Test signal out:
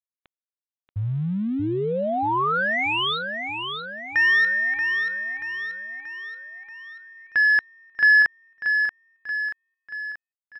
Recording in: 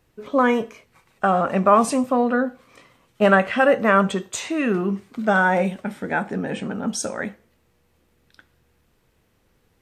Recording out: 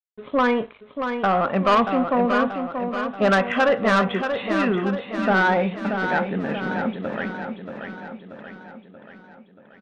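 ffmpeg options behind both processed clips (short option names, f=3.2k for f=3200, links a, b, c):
-af "aresample=8000,aeval=exprs='sgn(val(0))*max(abs(val(0))-0.00376,0)':c=same,aresample=44100,adynamicequalizer=threshold=0.0447:dfrequency=1100:dqfactor=1:tfrequency=1100:tqfactor=1:attack=5:release=100:ratio=0.375:range=1.5:mode=boostabove:tftype=bell,asoftclip=type=tanh:threshold=-12.5dB,aecho=1:1:632|1264|1896|2528|3160|3792|4424:0.447|0.241|0.13|0.0703|0.038|0.0205|0.0111"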